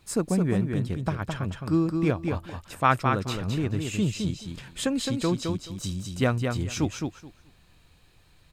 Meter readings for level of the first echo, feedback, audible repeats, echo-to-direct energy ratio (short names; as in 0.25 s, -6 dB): -5.0 dB, 17%, 2, -5.0 dB